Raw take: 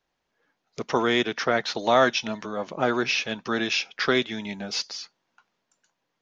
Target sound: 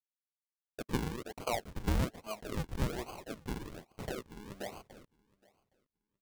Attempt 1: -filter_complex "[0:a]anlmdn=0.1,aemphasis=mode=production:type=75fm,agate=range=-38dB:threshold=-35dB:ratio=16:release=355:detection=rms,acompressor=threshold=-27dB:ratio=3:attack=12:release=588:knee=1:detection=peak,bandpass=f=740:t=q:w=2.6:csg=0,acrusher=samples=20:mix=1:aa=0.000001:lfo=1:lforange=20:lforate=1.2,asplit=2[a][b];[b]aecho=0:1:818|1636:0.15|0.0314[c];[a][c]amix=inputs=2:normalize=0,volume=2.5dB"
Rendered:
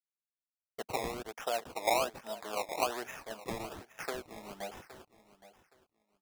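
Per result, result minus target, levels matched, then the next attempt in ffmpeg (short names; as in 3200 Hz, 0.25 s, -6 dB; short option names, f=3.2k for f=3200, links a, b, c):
decimation with a swept rate: distortion -27 dB; echo-to-direct +9.5 dB
-filter_complex "[0:a]anlmdn=0.1,aemphasis=mode=production:type=75fm,agate=range=-38dB:threshold=-35dB:ratio=16:release=355:detection=rms,acompressor=threshold=-27dB:ratio=3:attack=12:release=588:knee=1:detection=peak,bandpass=f=740:t=q:w=2.6:csg=0,acrusher=samples=48:mix=1:aa=0.000001:lfo=1:lforange=48:lforate=1.2,asplit=2[a][b];[b]aecho=0:1:818|1636:0.15|0.0314[c];[a][c]amix=inputs=2:normalize=0,volume=2.5dB"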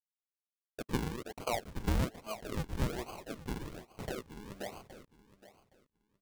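echo-to-direct +9.5 dB
-filter_complex "[0:a]anlmdn=0.1,aemphasis=mode=production:type=75fm,agate=range=-38dB:threshold=-35dB:ratio=16:release=355:detection=rms,acompressor=threshold=-27dB:ratio=3:attack=12:release=588:knee=1:detection=peak,bandpass=f=740:t=q:w=2.6:csg=0,acrusher=samples=48:mix=1:aa=0.000001:lfo=1:lforange=48:lforate=1.2,asplit=2[a][b];[b]aecho=0:1:818|1636:0.0501|0.0105[c];[a][c]amix=inputs=2:normalize=0,volume=2.5dB"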